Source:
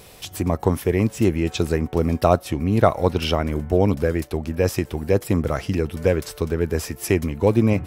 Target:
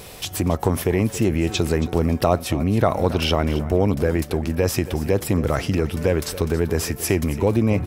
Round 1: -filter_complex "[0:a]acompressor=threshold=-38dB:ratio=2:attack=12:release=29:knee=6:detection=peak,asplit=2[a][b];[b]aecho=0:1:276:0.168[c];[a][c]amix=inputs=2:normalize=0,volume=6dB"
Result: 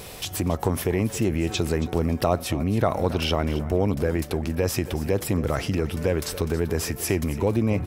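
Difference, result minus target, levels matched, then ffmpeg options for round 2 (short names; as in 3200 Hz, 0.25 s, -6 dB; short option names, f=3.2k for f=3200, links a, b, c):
compressor: peak gain reduction +4 dB
-filter_complex "[0:a]acompressor=threshold=-30.5dB:ratio=2:attack=12:release=29:knee=6:detection=peak,asplit=2[a][b];[b]aecho=0:1:276:0.168[c];[a][c]amix=inputs=2:normalize=0,volume=6dB"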